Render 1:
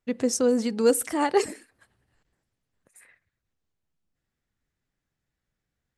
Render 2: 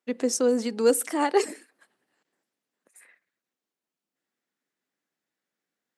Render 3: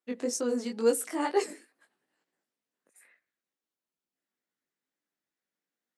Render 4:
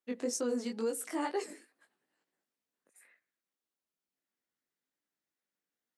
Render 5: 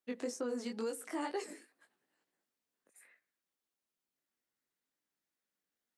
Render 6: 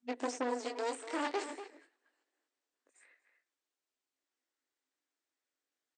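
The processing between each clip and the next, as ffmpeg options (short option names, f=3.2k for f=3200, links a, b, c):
-af "highpass=f=230:w=0.5412,highpass=f=230:w=1.3066"
-af "flanger=delay=17:depth=4.7:speed=2.2,volume=-2.5dB"
-af "alimiter=limit=-22dB:level=0:latency=1:release=212,volume=-2.5dB"
-filter_complex "[0:a]acrossover=split=700|2100[a][b][c];[a]acompressor=threshold=-37dB:ratio=4[d];[b]acompressor=threshold=-42dB:ratio=4[e];[c]acompressor=threshold=-48dB:ratio=4[f];[d][e][f]amix=inputs=3:normalize=0"
-filter_complex "[0:a]aeval=exprs='0.0422*(cos(1*acos(clip(val(0)/0.0422,-1,1)))-cos(1*PI/2))+0.0211*(cos(4*acos(clip(val(0)/0.0422,-1,1)))-cos(4*PI/2))':c=same,asplit=2[a][b];[b]adelay=240,highpass=300,lowpass=3.4k,asoftclip=type=hard:threshold=-32.5dB,volume=-8dB[c];[a][c]amix=inputs=2:normalize=0,afftfilt=real='re*between(b*sr/4096,240,8900)':imag='im*between(b*sr/4096,240,8900)':win_size=4096:overlap=0.75"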